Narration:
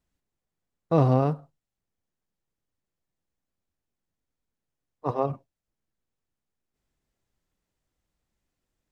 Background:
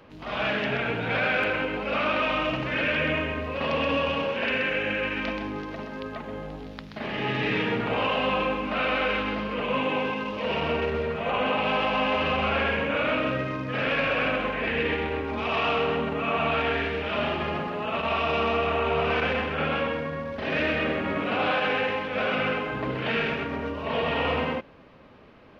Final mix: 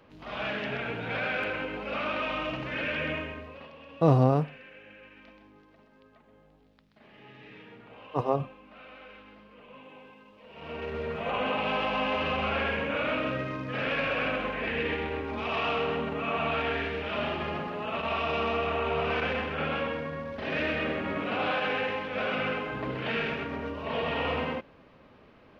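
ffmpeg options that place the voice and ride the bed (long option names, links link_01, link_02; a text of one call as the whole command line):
ffmpeg -i stem1.wav -i stem2.wav -filter_complex "[0:a]adelay=3100,volume=-0.5dB[link_01];[1:a]volume=13.5dB,afade=type=out:start_time=3.11:duration=0.6:silence=0.133352,afade=type=in:start_time=10.53:duration=0.62:silence=0.105925[link_02];[link_01][link_02]amix=inputs=2:normalize=0" out.wav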